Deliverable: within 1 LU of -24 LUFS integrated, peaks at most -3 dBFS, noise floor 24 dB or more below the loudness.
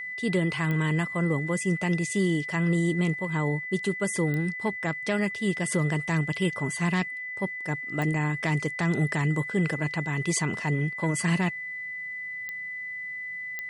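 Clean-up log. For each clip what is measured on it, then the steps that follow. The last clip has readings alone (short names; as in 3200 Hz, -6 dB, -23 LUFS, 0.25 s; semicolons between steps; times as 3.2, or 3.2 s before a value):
clicks 5; steady tone 2000 Hz; tone level -33 dBFS; loudness -27.5 LUFS; peak -14.0 dBFS; loudness target -24.0 LUFS
-> de-click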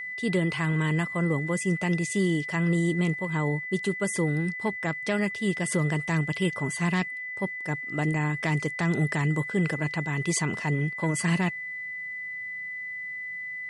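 clicks 0; steady tone 2000 Hz; tone level -33 dBFS
-> notch 2000 Hz, Q 30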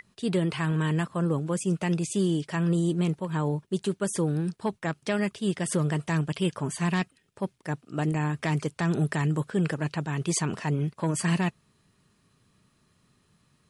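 steady tone none; loudness -28.0 LUFS; peak -15.0 dBFS; loudness target -24.0 LUFS
-> gain +4 dB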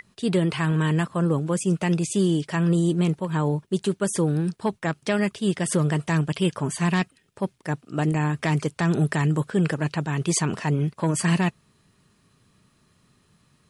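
loudness -24.0 LUFS; peak -11.0 dBFS; noise floor -64 dBFS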